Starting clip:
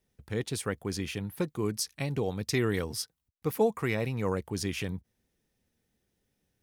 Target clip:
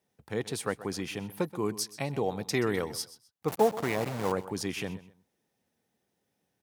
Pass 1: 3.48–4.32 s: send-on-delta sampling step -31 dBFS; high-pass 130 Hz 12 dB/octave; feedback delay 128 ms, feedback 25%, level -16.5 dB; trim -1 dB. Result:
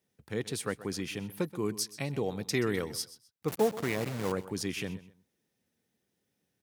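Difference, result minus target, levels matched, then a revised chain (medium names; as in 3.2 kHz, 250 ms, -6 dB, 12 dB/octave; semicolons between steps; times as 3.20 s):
1 kHz band -4.5 dB
3.48–4.32 s: send-on-delta sampling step -31 dBFS; high-pass 130 Hz 12 dB/octave; peaking EQ 810 Hz +7.5 dB 1.1 oct; feedback delay 128 ms, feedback 25%, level -16.5 dB; trim -1 dB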